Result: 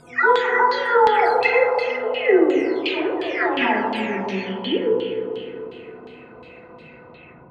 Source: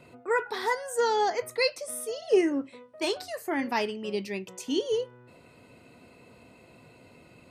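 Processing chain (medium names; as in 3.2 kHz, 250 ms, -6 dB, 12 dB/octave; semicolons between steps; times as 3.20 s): delay that grows with frequency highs early, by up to 621 ms; spring tank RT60 3.1 s, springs 32/36/50 ms, chirp 50 ms, DRR 0 dB; LFO low-pass saw down 2.8 Hz 990–3900 Hz; trim +7 dB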